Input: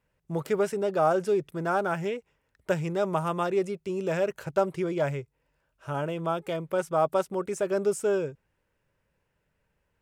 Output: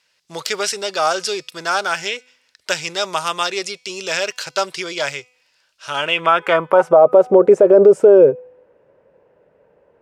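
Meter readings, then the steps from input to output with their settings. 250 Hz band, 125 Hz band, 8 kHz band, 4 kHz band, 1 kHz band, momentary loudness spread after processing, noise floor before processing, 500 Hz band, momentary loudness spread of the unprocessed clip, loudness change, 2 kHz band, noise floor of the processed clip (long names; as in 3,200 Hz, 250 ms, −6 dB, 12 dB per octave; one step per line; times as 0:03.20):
+8.0 dB, −2.0 dB, +15.5 dB, +22.5 dB, +10.0 dB, 16 LU, −76 dBFS, +13.0 dB, 8 LU, +12.5 dB, +14.5 dB, −64 dBFS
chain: band-pass filter sweep 4,700 Hz → 510 Hz, 0:05.84–0:07.06
tuned comb filter 250 Hz, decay 0.71 s, mix 30%
boost into a limiter +32.5 dB
level −1 dB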